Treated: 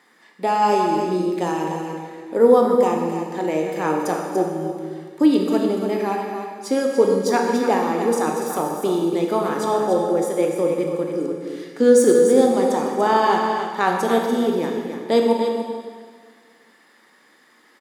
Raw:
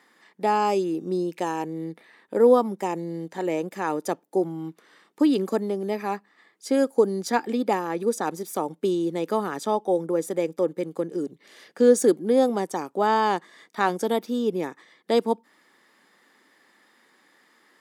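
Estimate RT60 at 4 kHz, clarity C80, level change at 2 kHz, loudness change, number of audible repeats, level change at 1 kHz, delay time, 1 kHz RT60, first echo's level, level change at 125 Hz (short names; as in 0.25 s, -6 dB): 1.7 s, 2.5 dB, +5.0 dB, +5.0 dB, 1, +5.5 dB, 0.29 s, 1.8 s, -8.0 dB, +5.0 dB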